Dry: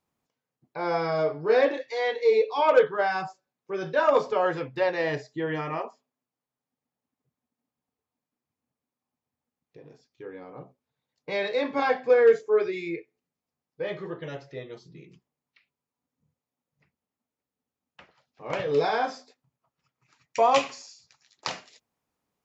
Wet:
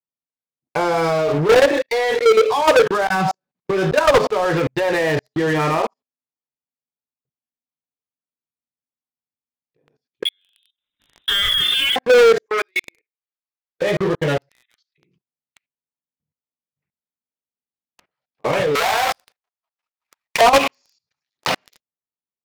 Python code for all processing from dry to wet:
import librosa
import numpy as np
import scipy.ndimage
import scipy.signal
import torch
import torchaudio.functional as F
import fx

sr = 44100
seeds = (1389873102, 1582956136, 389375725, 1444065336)

y = fx.chain(x, sr, fx.over_compress(threshold_db=-36.0, ratio=-1.0),
    fx.peak_eq(hz=180.0, db=9.5, octaves=0.65), at=(3.07, 3.71))
y = fx.chain(y, sr, fx.high_shelf(hz=2500.0, db=-3.5),
    fx.freq_invert(carrier_hz=3800),
    fx.pre_swell(db_per_s=90.0), at=(10.25, 11.96))
y = fx.chain(y, sr, fx.highpass(hz=1100.0, slope=12),
    fx.transformer_sat(knee_hz=1600.0), at=(12.46, 13.82))
y = fx.chain(y, sr, fx.steep_highpass(hz=1500.0, slope=36),
    fx.band_squash(depth_pct=40), at=(14.49, 14.98))
y = fx.chain(y, sr, fx.halfwave_hold(),
    fx.highpass(hz=670.0, slope=24),
    fx.resample_bad(factor=3, down='none', up='zero_stuff'), at=(18.75, 20.41))
y = scipy.signal.sosfilt(scipy.signal.butter(2, 4700.0, 'lowpass', fs=sr, output='sos'), y)
y = fx.level_steps(y, sr, step_db=20)
y = fx.leveller(y, sr, passes=5)
y = F.gain(torch.from_numpy(y), 4.0).numpy()